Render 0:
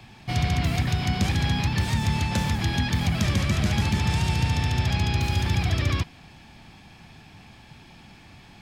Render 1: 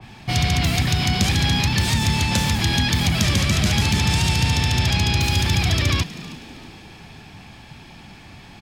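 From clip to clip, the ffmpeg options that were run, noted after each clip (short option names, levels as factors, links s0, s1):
-filter_complex "[0:a]asplit=2[s0][s1];[s1]alimiter=limit=0.0794:level=0:latency=1,volume=1[s2];[s0][s2]amix=inputs=2:normalize=0,asplit=5[s3][s4][s5][s6][s7];[s4]adelay=319,afreqshift=79,volume=0.126[s8];[s5]adelay=638,afreqshift=158,volume=0.0556[s9];[s6]adelay=957,afreqshift=237,volume=0.0243[s10];[s7]adelay=1276,afreqshift=316,volume=0.0107[s11];[s3][s8][s9][s10][s11]amix=inputs=5:normalize=0,adynamicequalizer=threshold=0.00794:dfrequency=2400:dqfactor=0.7:tfrequency=2400:tqfactor=0.7:attack=5:release=100:ratio=0.375:range=3.5:mode=boostabove:tftype=highshelf"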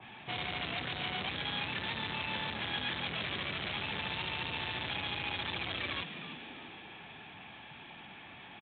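-af "aresample=8000,asoftclip=type=tanh:threshold=0.0422,aresample=44100,highpass=f=540:p=1,volume=0.708"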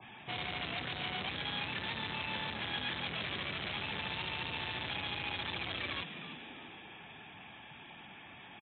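-af "afftfilt=real='re*gte(hypot(re,im),0.00178)':imag='im*gte(hypot(re,im),0.00178)':win_size=1024:overlap=0.75,volume=0.841"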